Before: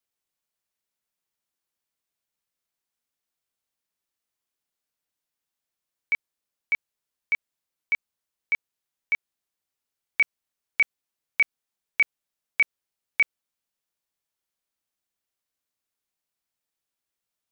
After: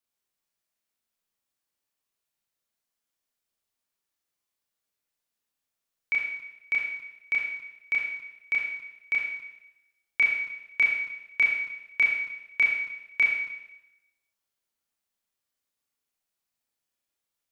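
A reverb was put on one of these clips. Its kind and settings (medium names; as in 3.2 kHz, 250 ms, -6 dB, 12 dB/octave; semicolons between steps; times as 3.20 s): Schroeder reverb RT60 0.94 s, combs from 27 ms, DRR -1.5 dB; trim -3 dB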